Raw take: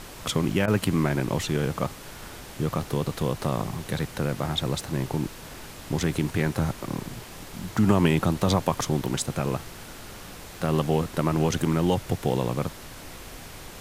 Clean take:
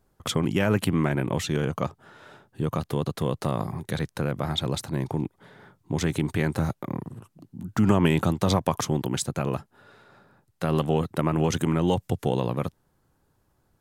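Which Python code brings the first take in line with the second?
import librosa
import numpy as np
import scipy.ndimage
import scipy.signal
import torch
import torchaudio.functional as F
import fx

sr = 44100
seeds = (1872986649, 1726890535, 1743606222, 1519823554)

y = fx.fix_interpolate(x, sr, at_s=(0.66,), length_ms=17.0)
y = fx.noise_reduce(y, sr, print_start_s=10.1, print_end_s=10.6, reduce_db=26.0)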